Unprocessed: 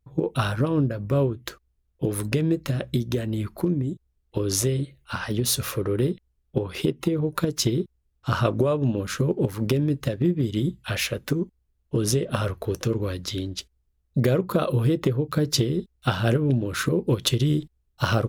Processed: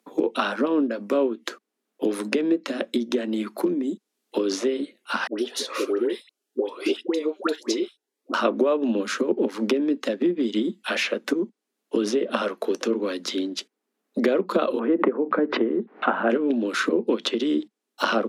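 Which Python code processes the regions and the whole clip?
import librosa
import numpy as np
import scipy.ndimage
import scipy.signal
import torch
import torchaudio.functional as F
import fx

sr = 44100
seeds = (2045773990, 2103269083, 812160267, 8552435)

y = fx.chain(x, sr, fx.highpass(hz=310.0, slope=24),
    fx.dispersion(late='highs', ms=116.0, hz=870.0),
    fx.notch_cascade(direction='rising', hz=2.0), at=(5.27, 8.34))
y = fx.chain(y, sr, fx.lowpass(hz=1900.0, slope=24),
    fx.peak_eq(hz=910.0, db=3.5, octaves=1.1),
    fx.pre_swell(db_per_s=120.0), at=(14.79, 16.3))
y = scipy.signal.sosfilt(scipy.signal.butter(12, 210.0, 'highpass', fs=sr, output='sos'), y)
y = fx.env_lowpass_down(y, sr, base_hz=2900.0, full_db=-20.0)
y = fx.band_squash(y, sr, depth_pct=40)
y = y * librosa.db_to_amplitude(3.0)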